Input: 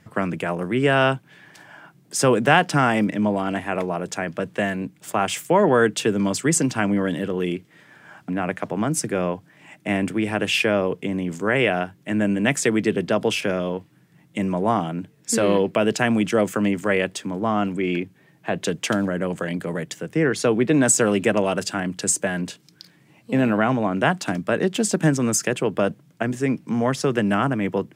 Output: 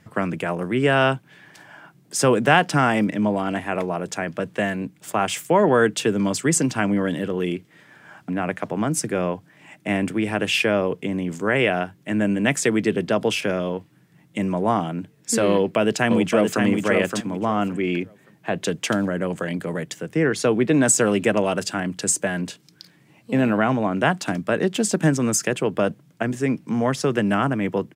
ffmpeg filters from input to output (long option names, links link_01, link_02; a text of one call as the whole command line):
ffmpeg -i in.wav -filter_complex "[0:a]asplit=2[link_01][link_02];[link_02]afade=type=in:start_time=15.53:duration=0.01,afade=type=out:start_time=16.63:duration=0.01,aecho=0:1:570|1140|1710:0.595662|0.119132|0.0238265[link_03];[link_01][link_03]amix=inputs=2:normalize=0" out.wav